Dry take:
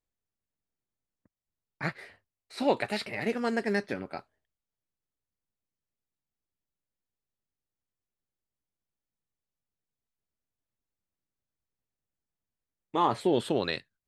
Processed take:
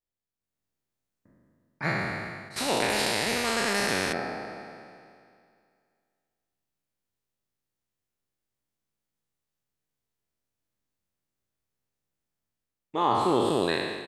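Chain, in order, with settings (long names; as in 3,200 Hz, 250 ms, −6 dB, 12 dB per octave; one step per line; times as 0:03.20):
peak hold with a decay on every bin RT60 2.23 s
automatic gain control gain up to 10 dB
far-end echo of a speakerphone 210 ms, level −15 dB
0:02.56–0:04.13: every bin compressed towards the loudest bin 2 to 1
level −8.5 dB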